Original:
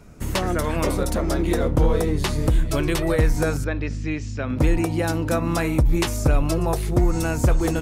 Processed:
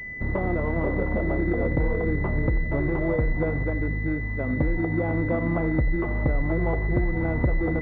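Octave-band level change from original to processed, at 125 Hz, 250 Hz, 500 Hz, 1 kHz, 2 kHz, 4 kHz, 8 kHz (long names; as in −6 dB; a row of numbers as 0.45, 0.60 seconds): −3.0 dB, −2.5 dB, −3.0 dB, −6.0 dB, +1.0 dB, below −25 dB, below −40 dB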